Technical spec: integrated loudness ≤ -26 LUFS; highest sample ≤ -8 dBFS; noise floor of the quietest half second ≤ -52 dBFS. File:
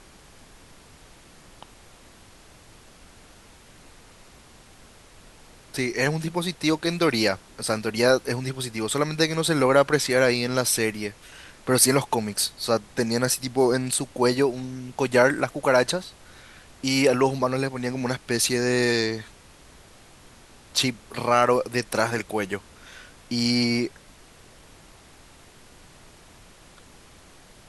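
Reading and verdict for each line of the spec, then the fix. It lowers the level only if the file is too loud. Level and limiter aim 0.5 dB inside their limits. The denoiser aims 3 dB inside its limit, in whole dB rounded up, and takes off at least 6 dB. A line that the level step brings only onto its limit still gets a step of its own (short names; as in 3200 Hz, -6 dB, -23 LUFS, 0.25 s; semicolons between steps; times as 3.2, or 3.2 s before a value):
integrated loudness -23.5 LUFS: fail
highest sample -3.5 dBFS: fail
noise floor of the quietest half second -50 dBFS: fail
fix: gain -3 dB; limiter -8.5 dBFS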